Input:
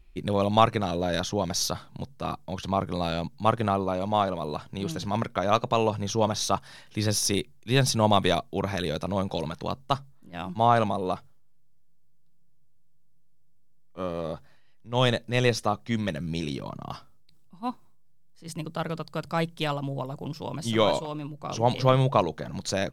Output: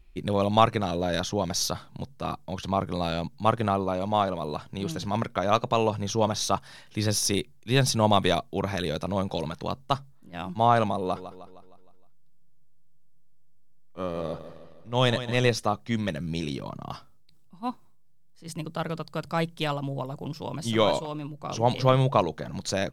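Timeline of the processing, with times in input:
11–15.49 feedback echo 0.155 s, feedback 53%, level -12 dB

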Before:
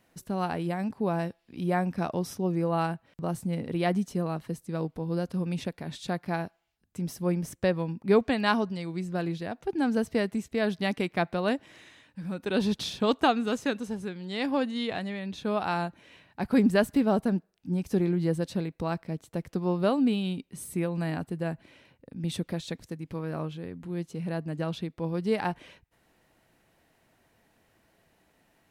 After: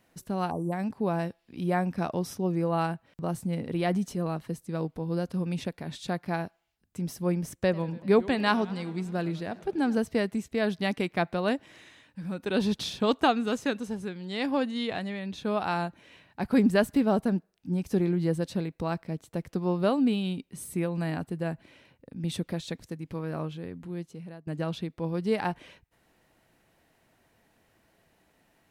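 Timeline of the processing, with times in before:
0.5–0.73 spectral delete 1200–5700 Hz
3.78–4.35 transient shaper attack -4 dB, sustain +3 dB
7.52–9.98 warbling echo 97 ms, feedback 70%, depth 185 cents, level -20 dB
23.76–24.47 fade out, to -23.5 dB

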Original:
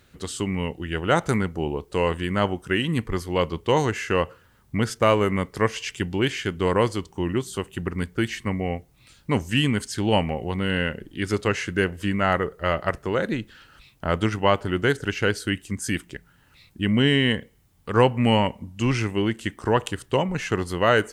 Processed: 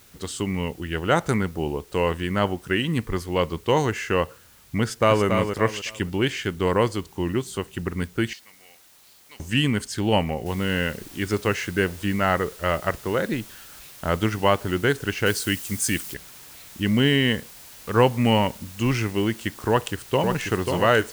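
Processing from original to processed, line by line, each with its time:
4.82–5.25 echo throw 0.28 s, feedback 30%, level -6 dB
8.33–9.4 band-pass 4600 Hz, Q 3.5
10.46 noise floor step -54 dB -45 dB
15.26–16.14 high shelf 4400 Hz +10 dB
19.69–20.25 echo throw 0.54 s, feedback 65%, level -5 dB

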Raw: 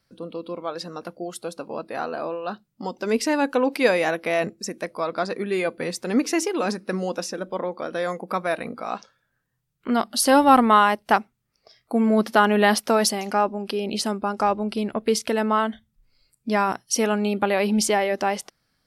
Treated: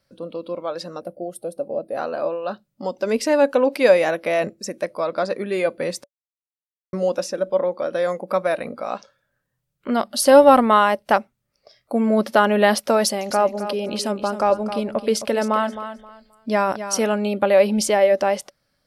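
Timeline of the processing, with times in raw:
1–1.97 spectral gain 800–8200 Hz -13 dB
6.04–6.93 mute
13.04–17.15 feedback echo 0.264 s, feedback 23%, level -11 dB
whole clip: bell 570 Hz +13 dB 0.2 oct

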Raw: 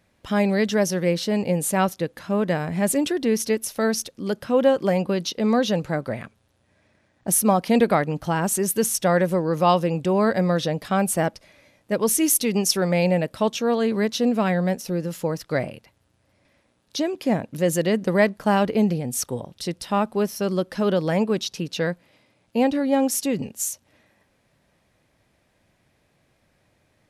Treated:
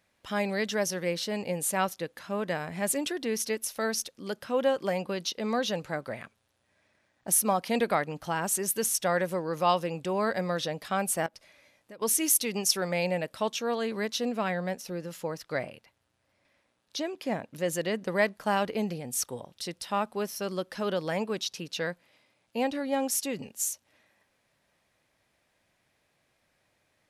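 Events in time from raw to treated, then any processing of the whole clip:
11.26–12.02 compressor 5:1, threshold -36 dBFS
14.32–18.16 high shelf 5300 Hz -4.5 dB
whole clip: low shelf 460 Hz -10 dB; gain -3.5 dB

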